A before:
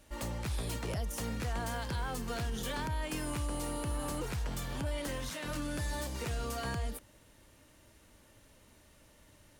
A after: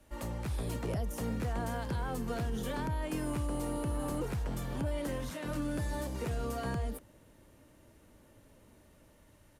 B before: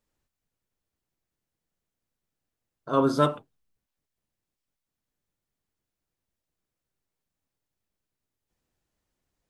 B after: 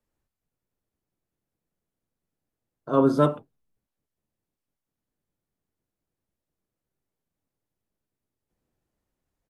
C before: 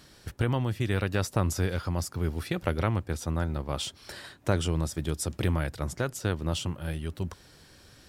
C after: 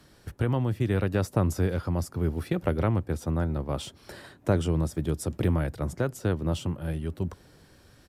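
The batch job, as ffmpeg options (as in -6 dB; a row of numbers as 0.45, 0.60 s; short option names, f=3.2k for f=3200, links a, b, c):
-filter_complex "[0:a]equalizer=f=4.9k:w=0.42:g=-6.5,acrossover=split=110|660|2900[a][b][c][d];[b]dynaudnorm=f=100:g=11:m=4dB[e];[a][e][c][d]amix=inputs=4:normalize=0,aresample=32000,aresample=44100"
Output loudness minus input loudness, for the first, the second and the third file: +1.0, +2.5, +2.0 LU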